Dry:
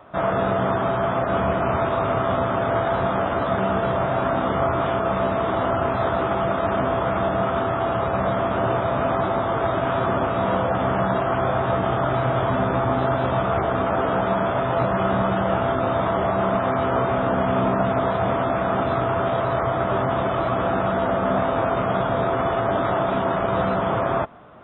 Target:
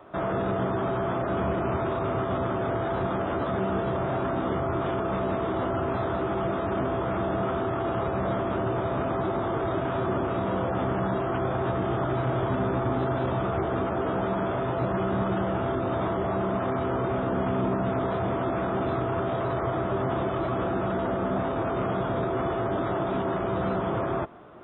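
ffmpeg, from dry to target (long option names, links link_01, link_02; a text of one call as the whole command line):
ffmpeg -i in.wav -filter_complex "[0:a]equalizer=frequency=360:width_type=o:width=0.44:gain=10,acrossover=split=240[link_01][link_02];[link_02]alimiter=limit=-18.5dB:level=0:latency=1:release=24[link_03];[link_01][link_03]amix=inputs=2:normalize=0,volume=-3.5dB" out.wav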